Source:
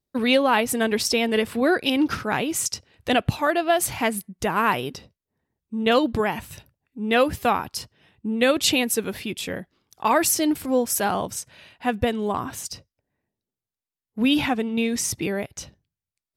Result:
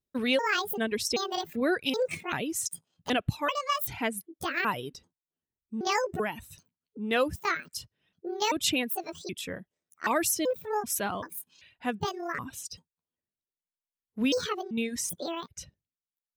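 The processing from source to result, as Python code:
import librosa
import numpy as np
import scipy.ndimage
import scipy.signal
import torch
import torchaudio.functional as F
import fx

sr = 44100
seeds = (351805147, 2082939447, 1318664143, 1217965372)

y = fx.pitch_trill(x, sr, semitones=9.0, every_ms=387)
y = fx.peak_eq(y, sr, hz=800.0, db=-4.0, octaves=0.49)
y = fx.notch(y, sr, hz=4600.0, q=13.0)
y = fx.dereverb_blind(y, sr, rt60_s=1.0)
y = y * 10.0 ** (-6.0 / 20.0)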